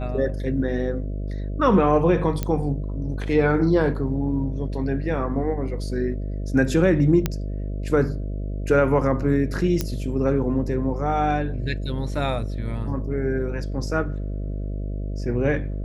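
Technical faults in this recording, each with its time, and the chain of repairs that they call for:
buzz 50 Hz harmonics 13 -28 dBFS
2.43 pop -11 dBFS
7.26 pop -8 dBFS
9.81 pop -9 dBFS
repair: de-click; de-hum 50 Hz, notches 13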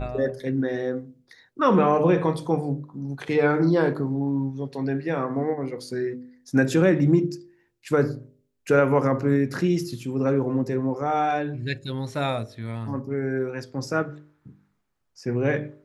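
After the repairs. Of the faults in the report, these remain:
none

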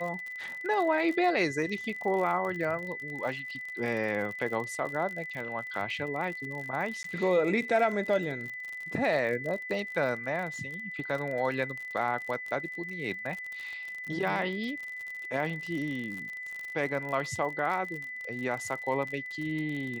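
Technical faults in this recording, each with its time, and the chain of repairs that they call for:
crackle 52/s -35 dBFS
tone 2000 Hz -37 dBFS
7.03–7.04 gap 13 ms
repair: de-click; notch 2000 Hz, Q 30; interpolate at 7.03, 13 ms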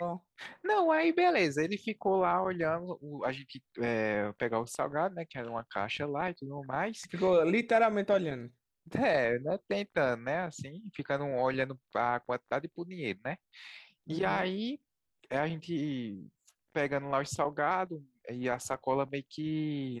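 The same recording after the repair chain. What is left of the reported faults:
none

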